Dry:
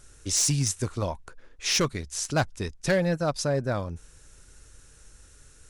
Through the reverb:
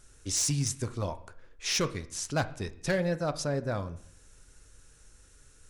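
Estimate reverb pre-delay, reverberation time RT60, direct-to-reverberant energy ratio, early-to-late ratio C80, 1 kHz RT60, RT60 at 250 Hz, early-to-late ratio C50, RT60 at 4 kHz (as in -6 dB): 3 ms, 0.60 s, 10.5 dB, 18.5 dB, 0.60 s, 0.70 s, 15.5 dB, 0.55 s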